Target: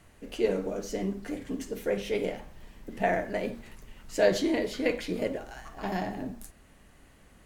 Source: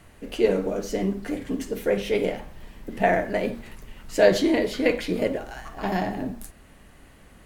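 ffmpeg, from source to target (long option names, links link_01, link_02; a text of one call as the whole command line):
ffmpeg -i in.wav -af "equalizer=frequency=6500:width=1.5:gain=3,volume=-6dB" out.wav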